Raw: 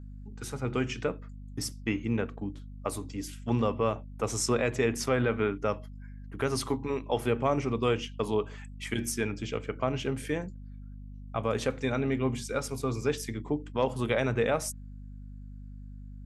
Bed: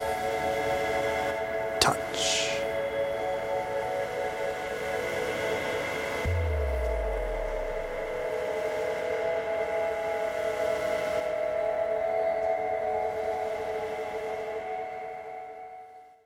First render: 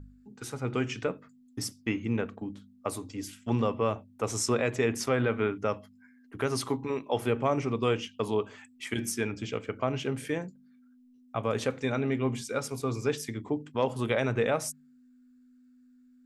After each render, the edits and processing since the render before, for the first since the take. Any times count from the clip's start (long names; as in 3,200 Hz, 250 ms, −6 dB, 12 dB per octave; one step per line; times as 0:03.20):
hum removal 50 Hz, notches 4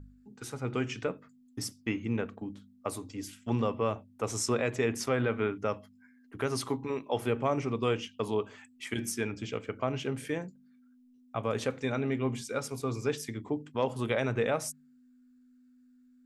level −2 dB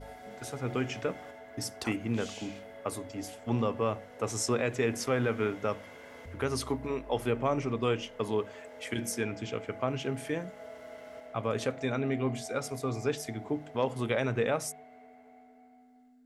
mix in bed −18 dB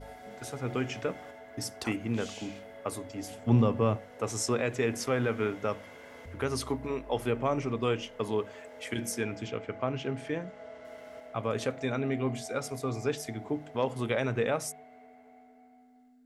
0:03.30–0:03.97: parametric band 130 Hz +9 dB 2.4 octaves
0:09.48–0:10.85: high-frequency loss of the air 82 metres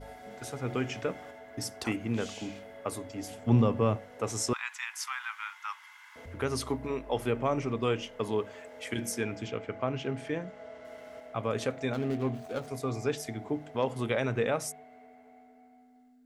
0:04.53–0:06.16: Butterworth high-pass 890 Hz 72 dB per octave
0:11.93–0:12.68: running median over 25 samples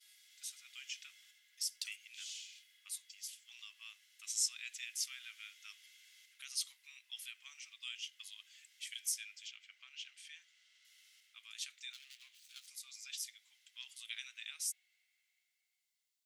inverse Chebyshev high-pass filter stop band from 500 Hz, stop band 80 dB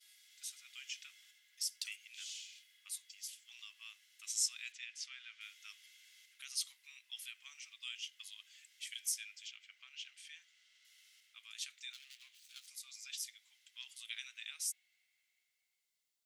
0:04.72–0:05.41: high-frequency loss of the air 120 metres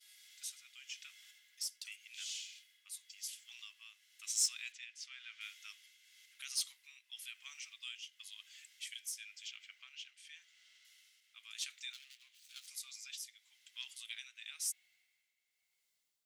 in parallel at −4 dB: soft clipping −36.5 dBFS, distortion −9 dB
on the sum: shaped tremolo triangle 0.96 Hz, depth 65%